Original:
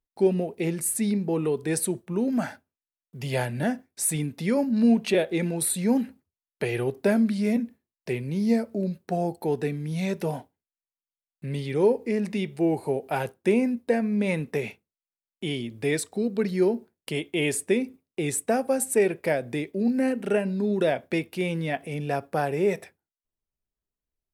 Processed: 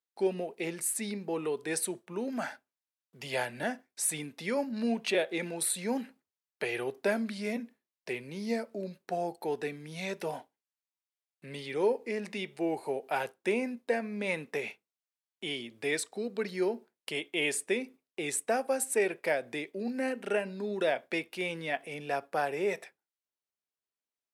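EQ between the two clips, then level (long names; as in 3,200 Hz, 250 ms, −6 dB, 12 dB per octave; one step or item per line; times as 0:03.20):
meter weighting curve A
−2.5 dB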